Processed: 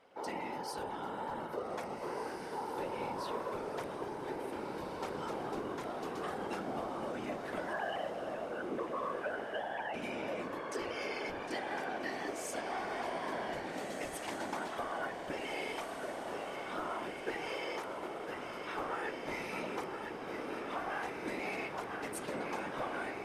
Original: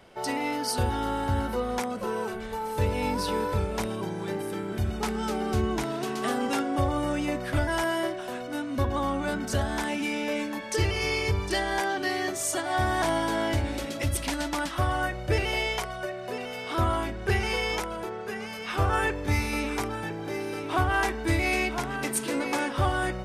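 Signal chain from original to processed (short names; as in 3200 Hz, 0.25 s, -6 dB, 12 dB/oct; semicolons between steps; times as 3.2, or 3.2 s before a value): 7.73–9.94 sine-wave speech; HPF 340 Hz 12 dB/oct; high shelf 2700 Hz -10 dB; compressor, threshold -29 dBFS, peak gain reduction 7 dB; whisperiser; wow and flutter 21 cents; diffused feedback echo 1.741 s, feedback 48%, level -5.5 dB; gain -6.5 dB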